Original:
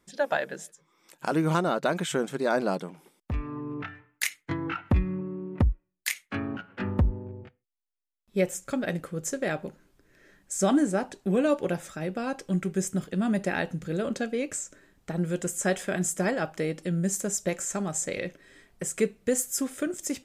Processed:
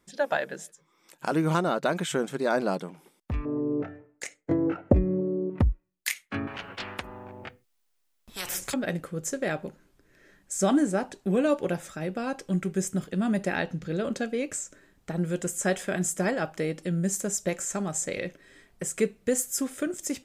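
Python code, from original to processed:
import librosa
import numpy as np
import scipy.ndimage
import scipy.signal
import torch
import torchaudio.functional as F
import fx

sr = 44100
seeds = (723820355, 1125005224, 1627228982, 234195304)

y = fx.curve_eq(x, sr, hz=(120.0, 190.0, 590.0, 970.0, 1900.0, 3500.0, 7600.0, 12000.0), db=(0, 3, 14, -6, -9, -15, -4, -24), at=(3.45, 5.5))
y = fx.spectral_comp(y, sr, ratio=10.0, at=(6.47, 8.74))
y = fx.high_shelf_res(y, sr, hz=6700.0, db=-6.0, q=1.5, at=(13.56, 14.05))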